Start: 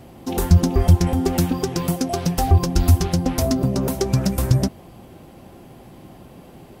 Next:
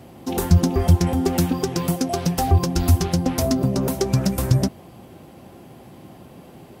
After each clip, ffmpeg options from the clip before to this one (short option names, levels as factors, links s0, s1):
-af "highpass=73"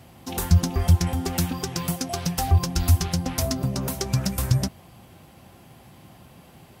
-af "equalizer=f=360:w=0.62:g=-10.5"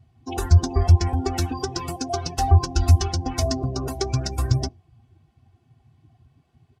-af "afftdn=nr=22:nf=-36,lowpass=7000,aecho=1:1:2.7:0.95"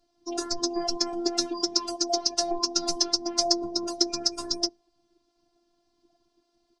-af "highpass=230,equalizer=f=260:t=q:w=4:g=5,equalizer=f=1100:t=q:w=4:g=-3,equalizer=f=2100:t=q:w=4:g=-3,lowpass=f=6400:w=0.5412,lowpass=f=6400:w=1.3066,aexciter=amount=4.6:drive=3.9:freq=4200,afftfilt=real='hypot(re,im)*cos(PI*b)':imag='0':win_size=512:overlap=0.75"